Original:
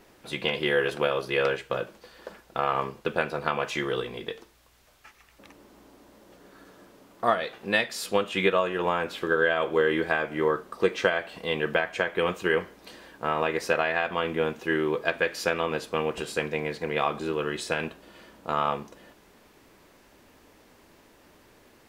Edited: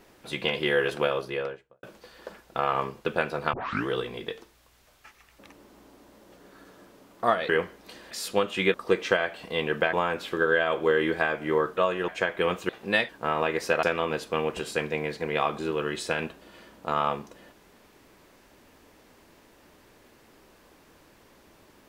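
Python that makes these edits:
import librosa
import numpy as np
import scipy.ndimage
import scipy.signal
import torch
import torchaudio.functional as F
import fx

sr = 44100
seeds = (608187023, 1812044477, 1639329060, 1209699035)

y = fx.studio_fade_out(x, sr, start_s=1.02, length_s=0.81)
y = fx.edit(y, sr, fx.tape_start(start_s=3.53, length_s=0.34),
    fx.swap(start_s=7.49, length_s=0.4, other_s=12.47, other_length_s=0.62),
    fx.swap(start_s=8.52, length_s=0.31, other_s=10.67, other_length_s=1.19),
    fx.cut(start_s=13.83, length_s=1.61), tone=tone)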